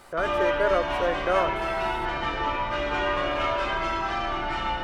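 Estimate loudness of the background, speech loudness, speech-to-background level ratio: -27.0 LUFS, -28.0 LUFS, -1.0 dB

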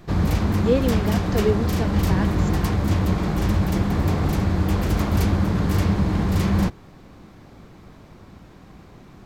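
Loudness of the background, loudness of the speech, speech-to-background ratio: -22.0 LUFS, -26.5 LUFS, -4.5 dB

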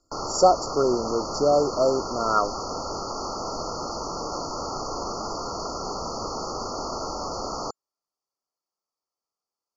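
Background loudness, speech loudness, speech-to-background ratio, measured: -31.5 LUFS, -23.5 LUFS, 8.0 dB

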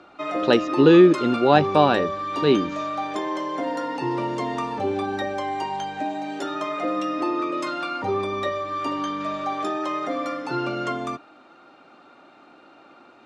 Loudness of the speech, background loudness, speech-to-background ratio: -18.0 LUFS, -27.0 LUFS, 9.0 dB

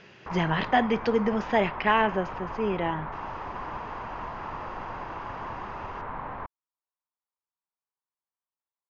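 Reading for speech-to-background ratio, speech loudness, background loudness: 10.5 dB, -26.5 LUFS, -37.0 LUFS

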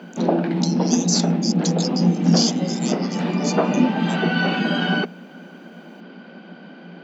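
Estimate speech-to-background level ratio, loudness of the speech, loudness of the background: -6.5 dB, -27.0 LUFS, -20.5 LUFS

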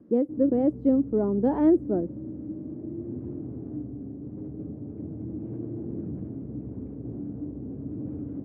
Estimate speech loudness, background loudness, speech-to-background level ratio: -24.0 LUFS, -37.0 LUFS, 13.0 dB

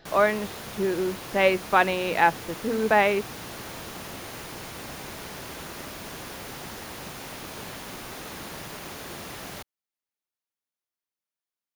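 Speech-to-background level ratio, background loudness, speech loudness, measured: 13.5 dB, -37.5 LUFS, -24.0 LUFS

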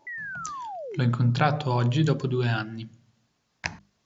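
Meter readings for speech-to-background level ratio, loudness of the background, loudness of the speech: 10.0 dB, -36.0 LUFS, -26.0 LUFS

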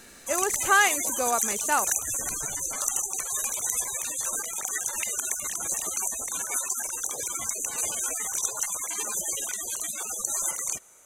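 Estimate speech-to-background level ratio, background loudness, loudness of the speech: 1.5 dB, -27.5 LUFS, -26.0 LUFS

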